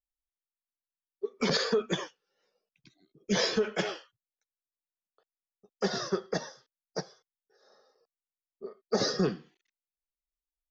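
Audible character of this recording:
background noise floor −96 dBFS
spectral slope −4.0 dB per octave

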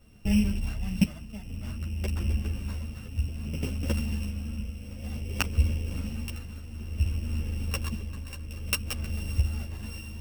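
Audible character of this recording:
a buzz of ramps at a fixed pitch in blocks of 16 samples
tremolo triangle 0.57 Hz, depth 70%
a shimmering, thickened sound

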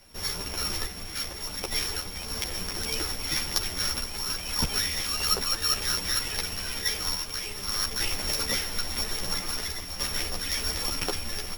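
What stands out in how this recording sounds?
a buzz of ramps at a fixed pitch in blocks of 8 samples
sample-and-hold tremolo
a shimmering, thickened sound

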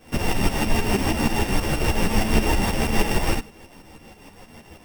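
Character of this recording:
a buzz of ramps at a fixed pitch in blocks of 16 samples
tremolo saw up 6.3 Hz, depth 70%
a shimmering, thickened sound

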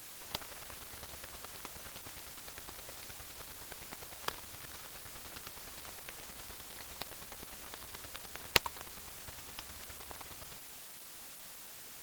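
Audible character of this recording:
aliases and images of a low sample rate 8,500 Hz, jitter 0%
chopped level 9.7 Hz, depth 65%, duty 15%
a quantiser's noise floor 8 bits, dither triangular
Opus

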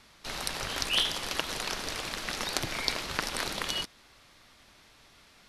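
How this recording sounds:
background noise floor −59 dBFS
spectral slope −2.5 dB per octave

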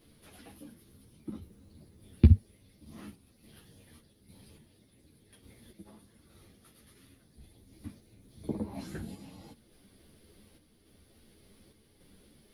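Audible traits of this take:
a quantiser's noise floor 12 bits, dither none
sample-and-hold tremolo
a shimmering, thickened sound

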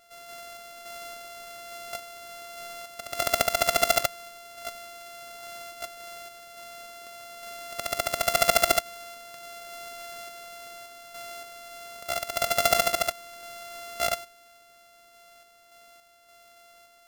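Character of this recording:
a buzz of ramps at a fixed pitch in blocks of 64 samples
sample-and-hold tremolo

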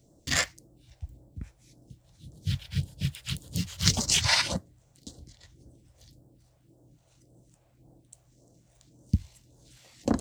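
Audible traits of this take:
phaser sweep stages 2, 1.8 Hz, lowest notch 250–2,300 Hz

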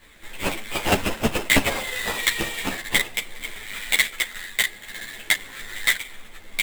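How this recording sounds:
aliases and images of a low sample rate 5,600 Hz, jitter 20%
a shimmering, thickened sound

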